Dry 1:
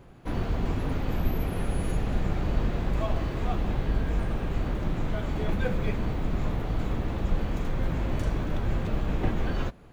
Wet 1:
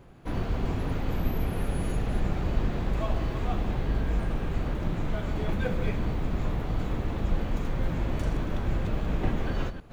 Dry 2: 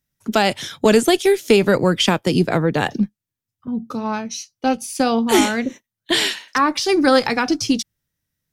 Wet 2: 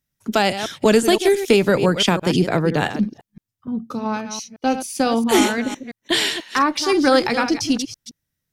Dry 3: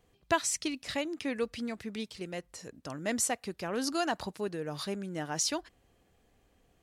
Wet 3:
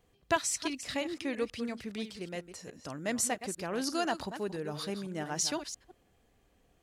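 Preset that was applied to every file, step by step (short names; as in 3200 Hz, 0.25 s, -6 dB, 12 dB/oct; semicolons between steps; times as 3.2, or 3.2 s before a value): reverse delay 0.169 s, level -10 dB; gain -1 dB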